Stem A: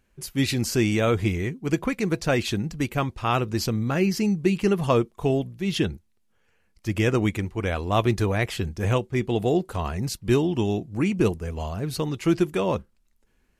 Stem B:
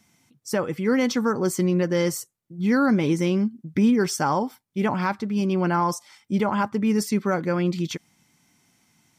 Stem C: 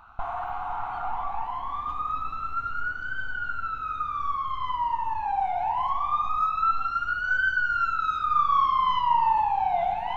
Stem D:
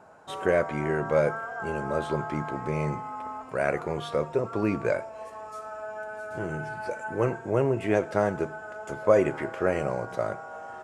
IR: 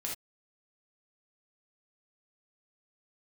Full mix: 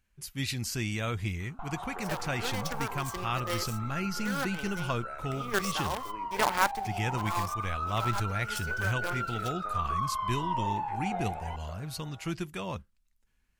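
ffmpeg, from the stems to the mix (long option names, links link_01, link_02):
-filter_complex "[0:a]equalizer=frequency=400:width_type=o:width=1.8:gain=-11.5,volume=-5.5dB,asplit=2[link_01][link_02];[1:a]highpass=600,acrusher=bits=5:dc=4:mix=0:aa=0.000001,adelay=1550,volume=1.5dB[link_03];[2:a]adelay=1400,volume=-10dB[link_04];[3:a]highpass=frequency=550:poles=1,acompressor=threshold=-29dB:ratio=6,adelay=1500,volume=-13.5dB[link_05];[link_02]apad=whole_len=473353[link_06];[link_03][link_06]sidechaincompress=threshold=-45dB:ratio=8:attack=40:release=169[link_07];[link_01][link_07][link_04][link_05]amix=inputs=4:normalize=0"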